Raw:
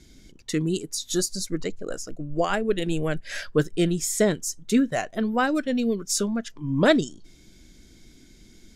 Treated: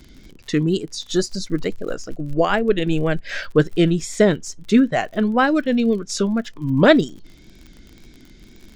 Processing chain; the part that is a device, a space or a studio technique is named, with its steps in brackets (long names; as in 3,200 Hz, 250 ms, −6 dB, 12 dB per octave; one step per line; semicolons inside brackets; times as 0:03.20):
lo-fi chain (low-pass filter 4,300 Hz 12 dB per octave; tape wow and flutter; surface crackle 47 per second −40 dBFS)
level +6 dB